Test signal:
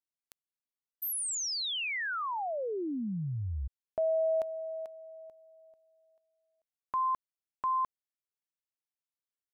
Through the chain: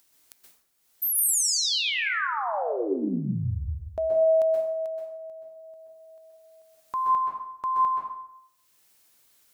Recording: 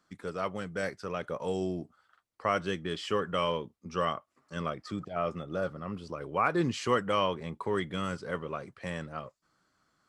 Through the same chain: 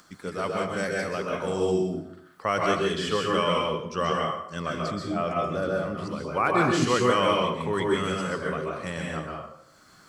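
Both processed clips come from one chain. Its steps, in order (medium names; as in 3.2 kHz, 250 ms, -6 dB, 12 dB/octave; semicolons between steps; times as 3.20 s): treble shelf 4.4 kHz +7 dB; upward compressor, threshold -48 dBFS; plate-style reverb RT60 0.76 s, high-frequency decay 0.7×, pre-delay 115 ms, DRR -2 dB; trim +2 dB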